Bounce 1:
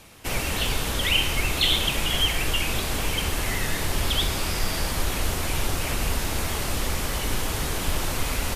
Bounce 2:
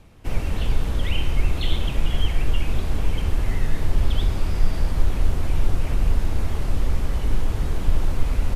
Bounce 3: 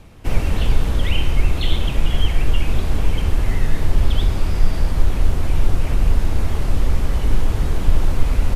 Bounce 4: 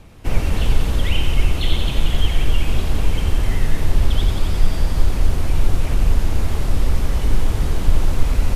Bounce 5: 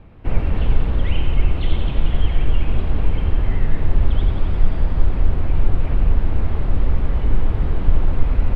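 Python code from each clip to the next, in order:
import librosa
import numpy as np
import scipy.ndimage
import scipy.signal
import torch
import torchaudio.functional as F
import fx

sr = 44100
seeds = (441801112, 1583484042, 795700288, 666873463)

y1 = fx.tilt_eq(x, sr, slope=-3.0)
y1 = y1 * librosa.db_to_amplitude(-6.0)
y2 = fx.rider(y1, sr, range_db=3, speed_s=2.0)
y2 = y2 * librosa.db_to_amplitude(4.0)
y3 = fx.echo_wet_highpass(y2, sr, ms=89, feedback_pct=79, hz=3500.0, wet_db=-4)
y4 = fx.air_absorb(y3, sr, metres=470.0)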